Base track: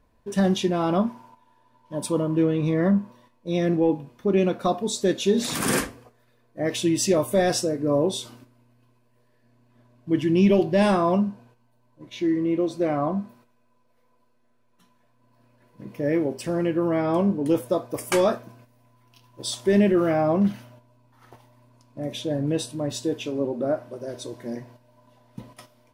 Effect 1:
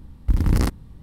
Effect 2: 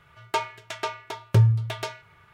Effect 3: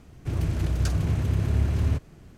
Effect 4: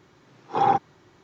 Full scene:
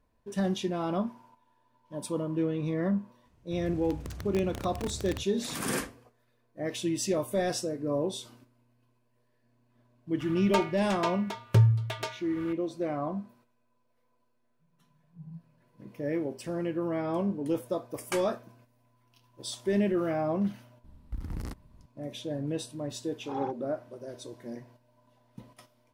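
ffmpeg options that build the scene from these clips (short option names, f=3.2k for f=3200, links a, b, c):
-filter_complex "[4:a]asplit=2[a][b];[0:a]volume=-8dB[c];[3:a]aeval=exprs='(mod(5.96*val(0)+1,2)-1)/5.96':c=same[d];[2:a]acompressor=mode=upward:threshold=-31dB:ratio=4:attack=0.34:release=365:knee=2.83:detection=peak[e];[a]asuperpass=centerf=160:order=4:qfactor=6.8[f];[1:a]acompressor=threshold=-35dB:ratio=1.5:attack=56:release=299:knee=1:detection=rms[g];[d]atrim=end=2.37,asetpts=PTS-STARTPTS,volume=-16dB,afade=t=in:d=0.004:c=hsin,afade=t=out:st=2.366:d=0.004:c=hsin,adelay=143325S[h];[e]atrim=end=2.33,asetpts=PTS-STARTPTS,volume=-3dB,afade=t=in:d=0.004:c=hsin,afade=t=out:st=2.326:d=0.004:c=hsin,adelay=10200[i];[f]atrim=end=1.23,asetpts=PTS-STARTPTS,volume=-2.5dB,afade=t=in:d=0.004:c=hsin,afade=t=out:st=1.226:d=0.004:c=hsin,adelay=14590[j];[g]atrim=end=1.02,asetpts=PTS-STARTPTS,volume=-11dB,afade=t=in:d=0.004:c=hsin,afade=t=out:st=1.016:d=0.004:c=hsin,adelay=919044S[k];[b]atrim=end=1.23,asetpts=PTS-STARTPTS,volume=-16.5dB,afade=t=in:d=0.004:c=hsin,afade=t=out:st=1.226:d=0.004:c=hsin,adelay=22740[l];[c][h][i][j][k][l]amix=inputs=6:normalize=0"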